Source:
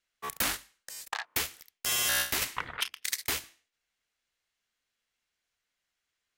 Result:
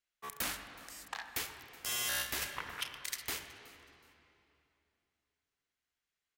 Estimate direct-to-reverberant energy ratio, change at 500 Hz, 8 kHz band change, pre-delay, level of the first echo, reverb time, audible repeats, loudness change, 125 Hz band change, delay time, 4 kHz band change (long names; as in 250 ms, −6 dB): 6.0 dB, −6.0 dB, −7.5 dB, 25 ms, −20.5 dB, 2.9 s, 2, −7.5 dB, −6.0 dB, 372 ms, −7.0 dB